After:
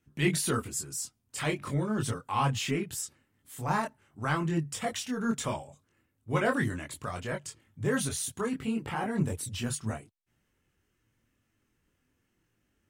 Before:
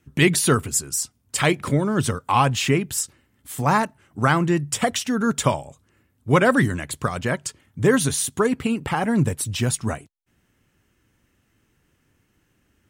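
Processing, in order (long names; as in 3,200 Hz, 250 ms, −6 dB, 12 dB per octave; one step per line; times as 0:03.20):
transient designer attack −4 dB, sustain +1 dB
multi-voice chorus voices 4, 0.41 Hz, delay 23 ms, depth 4.6 ms
level −6.5 dB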